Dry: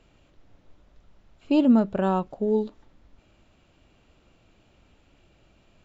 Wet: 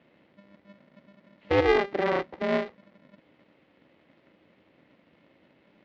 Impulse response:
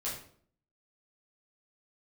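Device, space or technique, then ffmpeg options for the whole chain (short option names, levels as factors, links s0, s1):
ring modulator pedal into a guitar cabinet: -af "aeval=exprs='val(0)*sgn(sin(2*PI*200*n/s))':c=same,highpass=91,equalizer=f=110:t=q:w=4:g=-4,equalizer=f=310:t=q:w=4:g=9,equalizer=f=550:t=q:w=4:g=7,equalizer=f=2000:t=q:w=4:g=9,lowpass=f=4100:w=0.5412,lowpass=f=4100:w=1.3066,volume=0.562"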